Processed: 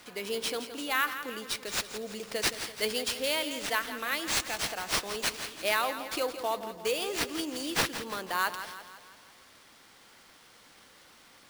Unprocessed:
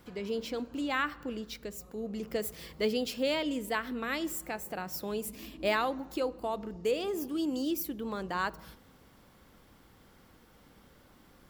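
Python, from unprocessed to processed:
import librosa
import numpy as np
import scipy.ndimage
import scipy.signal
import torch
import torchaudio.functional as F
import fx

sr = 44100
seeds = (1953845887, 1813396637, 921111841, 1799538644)

p1 = fx.highpass(x, sr, hz=960.0, slope=6)
p2 = fx.high_shelf(p1, sr, hz=5700.0, db=8.0)
p3 = fx.rider(p2, sr, range_db=5, speed_s=0.5)
p4 = p2 + (p3 * librosa.db_to_amplitude(2.5))
p5 = fx.sample_hold(p4, sr, seeds[0], rate_hz=14000.0, jitter_pct=0)
p6 = p5 + fx.echo_feedback(p5, sr, ms=168, feedback_pct=52, wet_db=-11.0, dry=0)
y = p6 * librosa.db_to_amplitude(-3.0)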